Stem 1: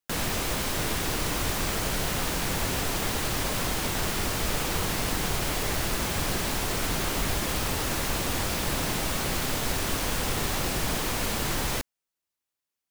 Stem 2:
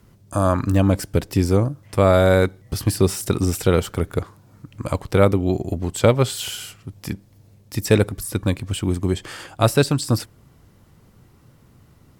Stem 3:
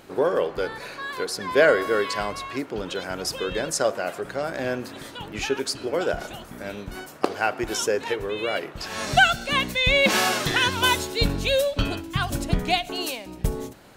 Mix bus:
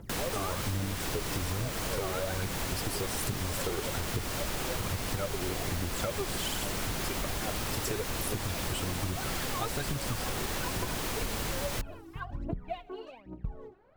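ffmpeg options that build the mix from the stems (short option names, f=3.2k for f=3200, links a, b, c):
-filter_complex "[0:a]volume=-3dB[a];[1:a]volume=-6dB[b];[2:a]lowpass=1.3k,volume=-14.5dB[c];[b][c]amix=inputs=2:normalize=0,aphaser=in_gain=1:out_gain=1:delay=2.8:decay=0.78:speed=1.2:type=triangular,acompressor=threshold=-28dB:ratio=4,volume=0dB[d];[a][d]amix=inputs=2:normalize=0,acompressor=threshold=-29dB:ratio=6"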